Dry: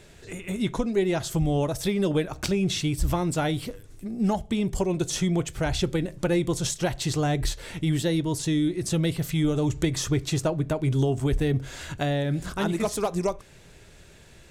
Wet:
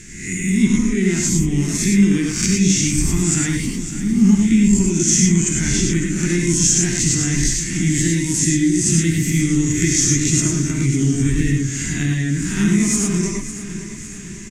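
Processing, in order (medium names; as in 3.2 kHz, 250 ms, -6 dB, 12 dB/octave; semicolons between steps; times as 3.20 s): reverse spectral sustain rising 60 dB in 0.61 s; treble shelf 3.3 kHz +9.5 dB; gated-style reverb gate 130 ms rising, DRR 1 dB; in parallel at +2 dB: compression, threshold -32 dBFS, peak gain reduction 17 dB; on the sum: FFT filter 140 Hz 0 dB, 200 Hz +9 dB, 370 Hz -2 dB, 530 Hz -28 dB, 1.4 kHz -8 dB, 2 kHz +3 dB, 3.9 kHz -13 dB, 6.7 kHz +6 dB, 12 kHz -14 dB; on a send: feedback delay 553 ms, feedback 55%, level -12.5 dB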